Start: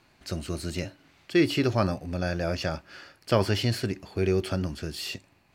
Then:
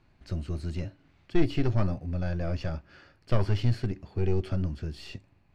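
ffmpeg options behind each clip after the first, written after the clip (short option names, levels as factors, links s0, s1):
-af "aeval=exprs='(tanh(6.31*val(0)+0.65)-tanh(0.65))/6.31':c=same,aemphasis=mode=reproduction:type=bsi,volume=0.668"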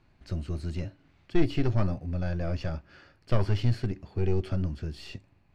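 -af anull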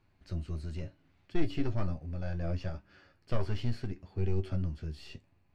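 -af "flanger=delay=9.7:depth=3.9:regen=51:speed=0.7:shape=triangular,volume=0.794"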